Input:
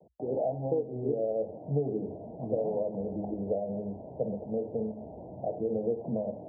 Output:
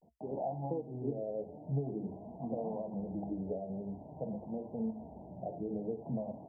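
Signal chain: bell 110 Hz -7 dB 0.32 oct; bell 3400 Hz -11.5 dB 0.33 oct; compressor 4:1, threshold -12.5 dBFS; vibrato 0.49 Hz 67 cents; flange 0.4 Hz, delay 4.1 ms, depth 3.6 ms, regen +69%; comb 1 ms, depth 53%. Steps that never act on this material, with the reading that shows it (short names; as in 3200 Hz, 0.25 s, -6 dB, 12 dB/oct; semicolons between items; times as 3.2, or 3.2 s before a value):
bell 3400 Hz: input band ends at 910 Hz; compressor, threshold -12.5 dBFS: input peak -17.0 dBFS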